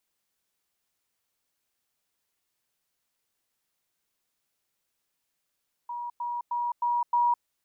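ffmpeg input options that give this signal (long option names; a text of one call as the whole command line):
ffmpeg -f lavfi -i "aevalsrc='pow(10,(-32+3*floor(t/0.31))/20)*sin(2*PI*959*t)*clip(min(mod(t,0.31),0.21-mod(t,0.31))/0.005,0,1)':duration=1.55:sample_rate=44100" out.wav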